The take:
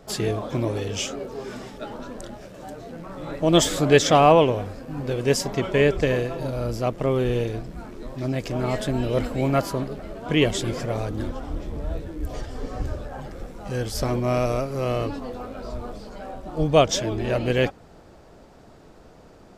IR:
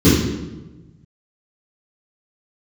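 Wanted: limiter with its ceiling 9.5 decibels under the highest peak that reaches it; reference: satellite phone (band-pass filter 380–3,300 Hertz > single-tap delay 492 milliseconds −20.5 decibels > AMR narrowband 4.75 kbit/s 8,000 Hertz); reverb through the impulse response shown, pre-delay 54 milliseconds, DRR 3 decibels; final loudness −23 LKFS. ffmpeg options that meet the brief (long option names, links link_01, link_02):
-filter_complex "[0:a]alimiter=limit=-12dB:level=0:latency=1,asplit=2[link_01][link_02];[1:a]atrim=start_sample=2205,adelay=54[link_03];[link_02][link_03]afir=irnorm=-1:irlink=0,volume=-28dB[link_04];[link_01][link_04]amix=inputs=2:normalize=0,highpass=380,lowpass=3300,aecho=1:1:492:0.0944,volume=1dB" -ar 8000 -c:a libopencore_amrnb -b:a 4750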